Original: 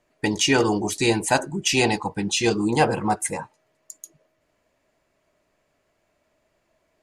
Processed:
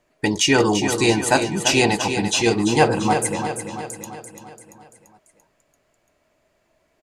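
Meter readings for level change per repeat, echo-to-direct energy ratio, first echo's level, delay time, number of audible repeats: -5.5 dB, -6.5 dB, -8.0 dB, 340 ms, 6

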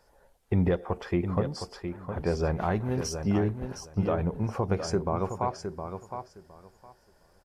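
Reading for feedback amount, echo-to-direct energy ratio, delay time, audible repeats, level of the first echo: 18%, -8.0 dB, 713 ms, 2, -8.0 dB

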